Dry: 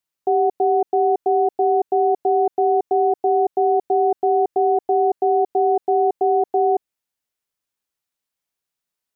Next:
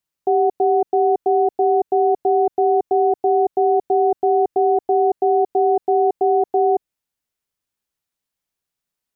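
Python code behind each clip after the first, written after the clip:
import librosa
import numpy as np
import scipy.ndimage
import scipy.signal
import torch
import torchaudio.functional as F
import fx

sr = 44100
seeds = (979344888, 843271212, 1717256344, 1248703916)

y = fx.low_shelf(x, sr, hz=220.0, db=6.5)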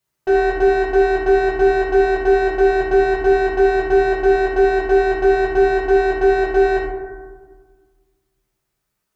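y = 10.0 ** (-24.5 / 20.0) * np.tanh(x / 10.0 ** (-24.5 / 20.0))
y = fx.rev_fdn(y, sr, rt60_s=1.5, lf_ratio=1.45, hf_ratio=0.3, size_ms=46.0, drr_db=-8.0)
y = y * 10.0 ** (2.0 / 20.0)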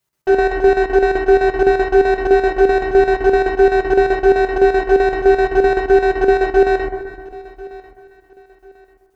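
y = fx.chopper(x, sr, hz=7.8, depth_pct=60, duty_pct=70)
y = fx.echo_feedback(y, sr, ms=1043, feedback_pct=31, wet_db=-20.5)
y = y * 10.0 ** (3.0 / 20.0)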